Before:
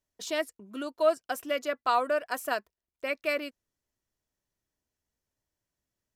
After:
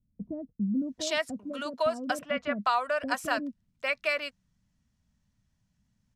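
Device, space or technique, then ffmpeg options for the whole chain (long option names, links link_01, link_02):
jukebox: -filter_complex "[0:a]lowpass=7300,lowshelf=frequency=270:width_type=q:width=3:gain=10,acompressor=threshold=-30dB:ratio=3,asettb=1/sr,asplit=3[link_01][link_02][link_03];[link_01]atrim=end=1.394[link_04];[link_02]atrim=start=1.39:end=1.8,asetpts=PTS-STARTPTS,afade=type=in:duration=0.004:curve=qsin,afade=type=out:start_time=0.406:duration=0.004:curve=qsin,acrossover=split=290 2900:gain=0.224 1 0.0794[link_05][link_06][link_07];[link_05][link_06][link_07]amix=inputs=3:normalize=0[link_08];[link_03]atrim=start=1.796[link_09];[link_04][link_08]acrossfade=duration=0.004:curve1=hsin:curve2=qsin[link_10];[link_10][link_09]acrossfade=duration=0.004:curve1=qsin:curve2=hsin,acrossover=split=450[link_11][link_12];[link_12]adelay=800[link_13];[link_11][link_13]amix=inputs=2:normalize=0,volume=6.5dB"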